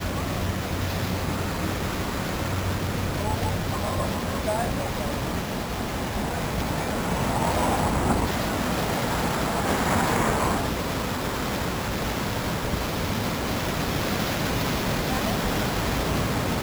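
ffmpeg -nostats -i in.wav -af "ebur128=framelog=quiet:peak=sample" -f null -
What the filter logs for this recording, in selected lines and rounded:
Integrated loudness:
  I:         -26.1 LUFS
  Threshold: -36.1 LUFS
Loudness range:
  LRA:         3.2 LU
  Threshold: -46.1 LUFS
  LRA low:   -27.5 LUFS
  LRA high:  -24.3 LUFS
Sample peak:
  Peak:      -10.9 dBFS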